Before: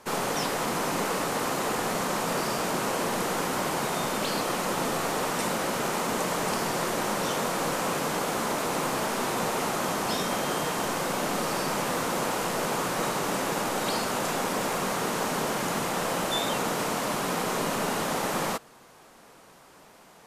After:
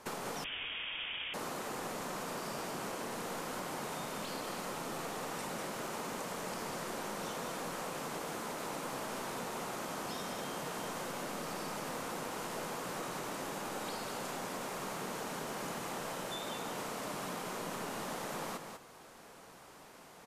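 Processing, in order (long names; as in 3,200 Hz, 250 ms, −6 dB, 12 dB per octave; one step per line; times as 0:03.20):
downward compressor 10 to 1, threshold −35 dBFS, peak gain reduction 12 dB
on a send: single-tap delay 196 ms −6 dB
0:00.44–0:01.34: on the sum: voice inversion scrambler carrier 3,500 Hz
level −3 dB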